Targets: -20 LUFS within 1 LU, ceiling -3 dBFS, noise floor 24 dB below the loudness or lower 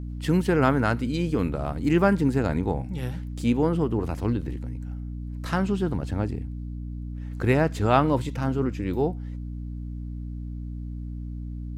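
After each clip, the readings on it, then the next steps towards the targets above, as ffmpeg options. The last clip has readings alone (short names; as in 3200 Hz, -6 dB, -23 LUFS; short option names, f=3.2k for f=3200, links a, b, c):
hum 60 Hz; harmonics up to 300 Hz; hum level -31 dBFS; loudness -26.5 LUFS; peak -6.0 dBFS; loudness target -20.0 LUFS
-> -af "bandreject=f=60:t=h:w=6,bandreject=f=120:t=h:w=6,bandreject=f=180:t=h:w=6,bandreject=f=240:t=h:w=6,bandreject=f=300:t=h:w=6"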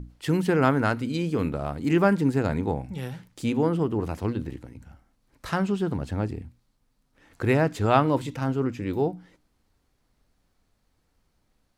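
hum none; loudness -25.5 LUFS; peak -5.0 dBFS; loudness target -20.0 LUFS
-> -af "volume=5.5dB,alimiter=limit=-3dB:level=0:latency=1"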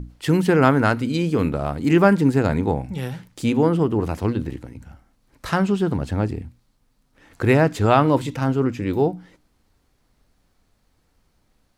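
loudness -20.5 LUFS; peak -3.0 dBFS; noise floor -66 dBFS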